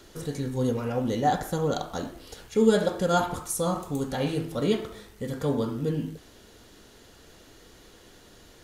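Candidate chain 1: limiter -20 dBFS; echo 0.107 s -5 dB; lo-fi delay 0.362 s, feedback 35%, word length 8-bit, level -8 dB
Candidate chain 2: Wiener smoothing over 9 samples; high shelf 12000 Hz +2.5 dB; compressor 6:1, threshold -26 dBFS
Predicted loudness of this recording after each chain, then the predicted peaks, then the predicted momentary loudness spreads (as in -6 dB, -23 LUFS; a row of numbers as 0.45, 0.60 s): -29.0, -32.0 LUFS; -14.5, -17.5 dBFS; 9, 7 LU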